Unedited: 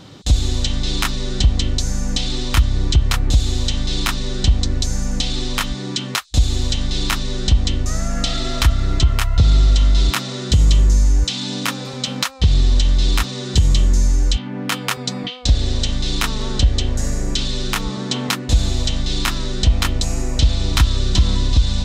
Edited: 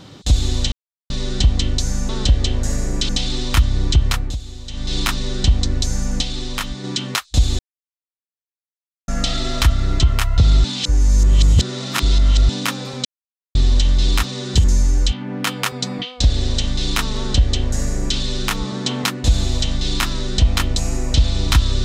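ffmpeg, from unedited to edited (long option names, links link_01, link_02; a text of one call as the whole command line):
ffmpeg -i in.wav -filter_complex "[0:a]asplit=16[link_01][link_02][link_03][link_04][link_05][link_06][link_07][link_08][link_09][link_10][link_11][link_12][link_13][link_14][link_15][link_16];[link_01]atrim=end=0.72,asetpts=PTS-STARTPTS,afade=type=out:start_time=0.716:duration=0.004:curve=hsin[link_17];[link_02]atrim=start=0.72:end=1.1,asetpts=PTS-STARTPTS,volume=0[link_18];[link_03]atrim=start=1.1:end=2.092,asetpts=PTS-STARTPTS,afade=type=in:duration=0.004:curve=hsin[link_19];[link_04]atrim=start=16.428:end=17.432[link_20];[link_05]atrim=start=2.088:end=3.38,asetpts=PTS-STARTPTS,afade=type=out:start_time=0.992:duration=0.3:silence=0.199526[link_21];[link_06]atrim=start=3.38:end=3.67,asetpts=PTS-STARTPTS,volume=-14dB[link_22];[link_07]atrim=start=3.67:end=5.232,asetpts=PTS-STARTPTS,afade=type=in:duration=0.3:silence=0.199526[link_23];[link_08]atrim=start=5.228:end=5.842,asetpts=PTS-STARTPTS,volume=-3.5dB[link_24];[link_09]atrim=start=5.838:end=6.59,asetpts=PTS-STARTPTS,afade=type=out:start_time=0.748:duration=0.004:curve=hsin[link_25];[link_10]atrim=start=6.59:end=8.08,asetpts=PTS-STARTPTS,volume=0[link_26];[link_11]atrim=start=8.08:end=9.642,asetpts=PTS-STARTPTS,afade=type=in:duration=0.004:curve=hsin[link_27];[link_12]atrim=start=9.638:end=11.492,asetpts=PTS-STARTPTS,areverse[link_28];[link_13]atrim=start=11.488:end=12.05,asetpts=PTS-STARTPTS,afade=type=out:start_time=0.558:duration=0.004:curve=hsin[link_29];[link_14]atrim=start=12.05:end=12.55,asetpts=PTS-STARTPTS,volume=0[link_30];[link_15]atrim=start=12.55:end=13.642,asetpts=PTS-STARTPTS,afade=type=in:duration=0.004:curve=hsin[link_31];[link_16]atrim=start=13.888[link_32];[link_17][link_18][link_19]concat=n=3:v=0:a=1[link_33];[link_33][link_20]acrossfade=duration=0.004:curve1=hsin:curve2=hsin[link_34];[link_21][link_22][link_23]concat=n=3:v=0:a=1[link_35];[link_34][link_35]acrossfade=duration=0.004:curve1=hsin:curve2=hsin[link_36];[link_36][link_24]acrossfade=duration=0.004:curve1=hsin:curve2=hsin[link_37];[link_25][link_26][link_27]concat=n=3:v=0:a=1[link_38];[link_37][link_38]acrossfade=duration=0.004:curve1=hsin:curve2=hsin[link_39];[link_39][link_28]acrossfade=duration=0.004:curve1=hsin:curve2=hsin[link_40];[link_29][link_30][link_31]concat=n=3:v=0:a=1[link_41];[link_40][link_41]acrossfade=duration=0.004:curve1=hsin:curve2=hsin[link_42];[link_42][link_32]acrossfade=duration=0.004:curve1=hsin:curve2=hsin" out.wav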